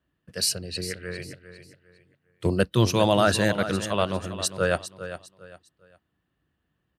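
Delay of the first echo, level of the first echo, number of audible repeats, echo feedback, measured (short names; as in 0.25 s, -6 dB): 0.403 s, -12.0 dB, 3, 29%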